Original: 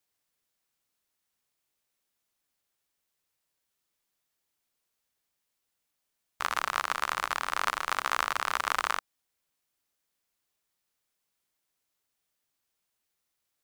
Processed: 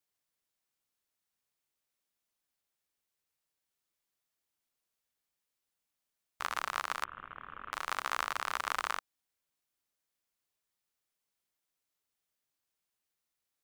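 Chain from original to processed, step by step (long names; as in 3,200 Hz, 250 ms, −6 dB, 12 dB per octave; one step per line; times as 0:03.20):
0:07.04–0:07.73: variable-slope delta modulation 16 kbit/s
level −5.5 dB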